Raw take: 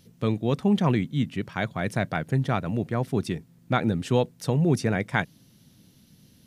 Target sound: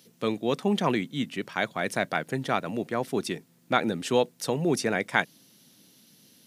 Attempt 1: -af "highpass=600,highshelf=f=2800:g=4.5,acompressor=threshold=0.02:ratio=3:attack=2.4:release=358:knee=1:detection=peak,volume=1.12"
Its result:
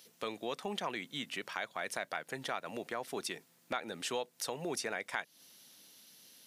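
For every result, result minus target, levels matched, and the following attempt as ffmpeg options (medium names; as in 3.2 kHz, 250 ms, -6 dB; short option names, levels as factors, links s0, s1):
compression: peak gain reduction +14.5 dB; 250 Hz band -5.5 dB
-af "highpass=600,highshelf=f=2800:g=4.5,volume=1.12"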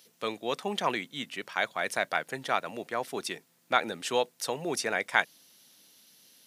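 250 Hz band -8.0 dB
-af "highpass=270,highshelf=f=2800:g=4.5,volume=1.12"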